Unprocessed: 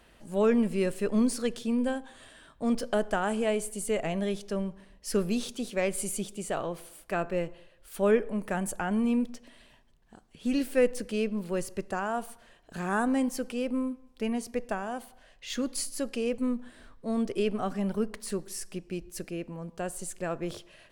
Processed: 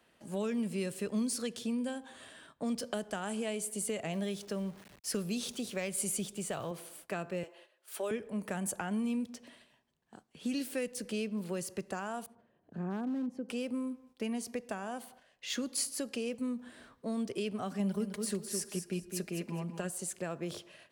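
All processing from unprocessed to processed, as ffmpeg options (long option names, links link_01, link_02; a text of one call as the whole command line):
ffmpeg -i in.wav -filter_complex "[0:a]asettb=1/sr,asplit=3[link_01][link_02][link_03];[link_01]atrim=end=4.134[link_04];[link_02]atrim=start=4.13:end=6.71,asetpts=PTS-STARTPTS,afade=type=in:duration=0.004:curve=qsin,afade=type=out:start_time=2.576:duration=0.004:curve=qsin,asubboost=boost=4.5:cutoff=130,aeval=exprs='val(0)*gte(abs(val(0)),0.00335)':channel_layout=same[link_05];[link_03]atrim=start=6.706[link_06];[link_04][link_05]acrossfade=duration=0.004:curve1=hsin:curve2=qsin[link_07];[link_07][link_06]acrossfade=duration=0.004:curve1=qsin:curve2=hsin,asettb=1/sr,asplit=3[link_08][link_09][link_10];[link_08]atrim=end=7.434[link_11];[link_09]atrim=start=7.43:end=8.11,asetpts=PTS-STARTPTS,afade=type=in:duration=0.004:curve=qsin,afade=type=out:start_time=0.676:duration=0.004:curve=qsin,highpass=frequency=350:width=0.5412,highpass=frequency=350:width=1.3066,bandreject=frequency=460:width=8.2,aecho=1:1:4.7:0.36,atrim=end_sample=29988[link_12];[link_10]atrim=start=8.106[link_13];[link_11][link_12]acrossfade=duration=0.004:curve1=hsin:curve2=qsin[link_14];[link_14][link_13]acrossfade=duration=0.004:curve1=qsin:curve2=hsin,asettb=1/sr,asplit=3[link_15][link_16][link_17];[link_15]atrim=end=12.264[link_18];[link_16]atrim=start=12.26:end=13.49,asetpts=PTS-STARTPTS,afade=type=in:duration=0.004:curve=qsin,afade=type=out:start_time=1.226:duration=0.004:curve=qsin,acompressor=mode=upward:threshold=-44dB:ratio=2.5:attack=3.2:release=140:knee=2.83:detection=peak,bandpass=frequency=160:width_type=q:width=0.57,asoftclip=type=hard:threshold=-25dB[link_19];[link_17]atrim=start=13.486[link_20];[link_18][link_19]acrossfade=duration=0.004:curve1=hsin:curve2=qsin[link_21];[link_21][link_20]acrossfade=duration=0.004:curve1=qsin:curve2=hsin,asettb=1/sr,asplit=3[link_22][link_23][link_24];[link_22]atrim=end=17.794[link_25];[link_23]atrim=start=17.79:end=19.9,asetpts=PTS-STARTPTS,afade=type=in:duration=0.004:curve=qsin,afade=type=out:start_time=2.106:duration=0.004:curve=qsin,aecho=1:1:4.9:0.54,atrim=end_sample=93051,aecho=1:1:208|416|624:0.398|0.0955|0.0229,atrim=end_sample=93051[link_26];[link_24]atrim=start=19.896[link_27];[link_25][link_26]acrossfade=duration=0.004:curve1=hsin:curve2=qsin[link_28];[link_28][link_27]acrossfade=duration=0.004:curve1=qsin:curve2=hsin,agate=range=-8dB:threshold=-54dB:ratio=16:detection=peak,highpass=120,acrossover=split=160|3000[link_29][link_30][link_31];[link_30]acompressor=threshold=-35dB:ratio=6[link_32];[link_29][link_32][link_31]amix=inputs=3:normalize=0" out.wav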